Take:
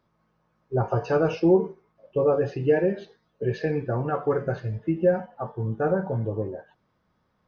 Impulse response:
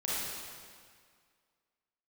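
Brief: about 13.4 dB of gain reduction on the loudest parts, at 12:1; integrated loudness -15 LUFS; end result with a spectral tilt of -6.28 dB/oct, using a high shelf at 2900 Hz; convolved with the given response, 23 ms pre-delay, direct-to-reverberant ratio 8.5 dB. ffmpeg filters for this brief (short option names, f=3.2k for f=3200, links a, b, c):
-filter_complex "[0:a]highshelf=f=2.9k:g=-4,acompressor=threshold=-28dB:ratio=12,asplit=2[a][b];[1:a]atrim=start_sample=2205,adelay=23[c];[b][c]afir=irnorm=-1:irlink=0,volume=-15dB[d];[a][d]amix=inputs=2:normalize=0,volume=18.5dB"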